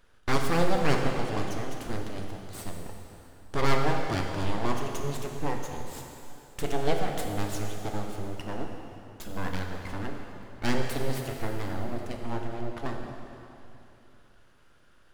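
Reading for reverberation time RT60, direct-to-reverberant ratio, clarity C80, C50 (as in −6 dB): 2.9 s, 1.5 dB, 4.0 dB, 3.0 dB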